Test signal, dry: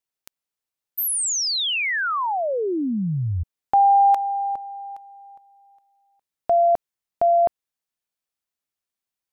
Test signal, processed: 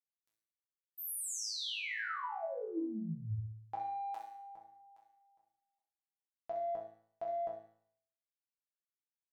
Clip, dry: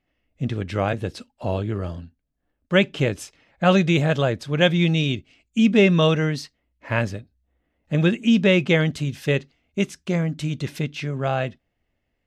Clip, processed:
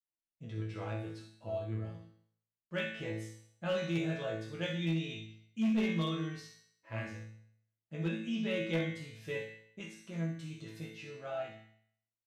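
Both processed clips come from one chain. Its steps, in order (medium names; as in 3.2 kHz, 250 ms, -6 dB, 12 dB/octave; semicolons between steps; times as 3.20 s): expander -49 dBFS, range -19 dB; flutter echo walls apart 11 m, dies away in 0.45 s; Chebyshev shaper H 7 -38 dB, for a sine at -4 dBFS; chord resonator A2 fifth, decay 0.65 s; hard clipper -26 dBFS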